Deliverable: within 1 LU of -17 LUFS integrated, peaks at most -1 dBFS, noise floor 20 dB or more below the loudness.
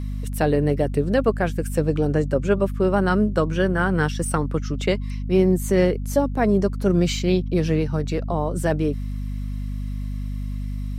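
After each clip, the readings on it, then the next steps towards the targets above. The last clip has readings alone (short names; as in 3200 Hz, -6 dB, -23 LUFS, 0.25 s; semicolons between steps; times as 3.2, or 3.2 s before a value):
hum 50 Hz; harmonics up to 250 Hz; hum level -25 dBFS; loudness -22.5 LUFS; peak -6.0 dBFS; loudness target -17.0 LUFS
-> de-hum 50 Hz, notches 5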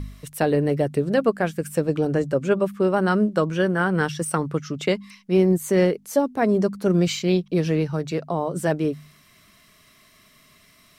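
hum none; loudness -22.5 LUFS; peak -7.0 dBFS; loudness target -17.0 LUFS
-> gain +5.5 dB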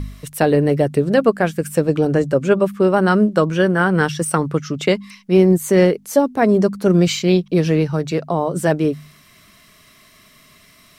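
loudness -17.0 LUFS; peak -1.5 dBFS; noise floor -50 dBFS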